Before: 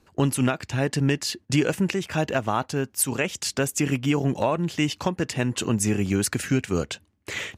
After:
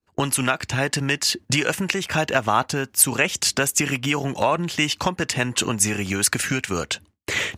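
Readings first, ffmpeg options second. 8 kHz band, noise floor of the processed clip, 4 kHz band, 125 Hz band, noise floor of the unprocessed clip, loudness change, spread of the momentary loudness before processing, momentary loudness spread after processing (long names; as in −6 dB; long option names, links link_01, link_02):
+7.5 dB, −62 dBFS, +7.5 dB, −2.0 dB, −63 dBFS, +3.5 dB, 4 LU, 6 LU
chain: -filter_complex "[0:a]agate=range=-33dB:threshold=-47dB:ratio=3:detection=peak,acrossover=split=750|1000[link_01][link_02][link_03];[link_01]acompressor=threshold=-31dB:ratio=6[link_04];[link_04][link_02][link_03]amix=inputs=3:normalize=0,volume=7.5dB"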